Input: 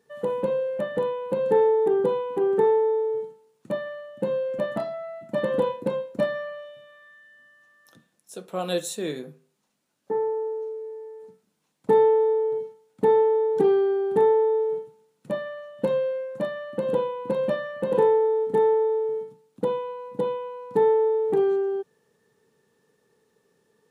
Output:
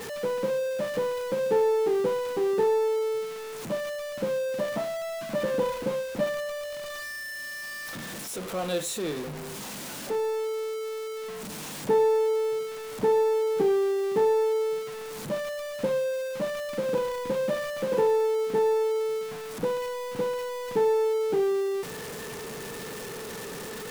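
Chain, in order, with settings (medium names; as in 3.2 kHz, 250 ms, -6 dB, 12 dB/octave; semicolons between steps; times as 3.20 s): jump at every zero crossing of -26.5 dBFS; trim -5 dB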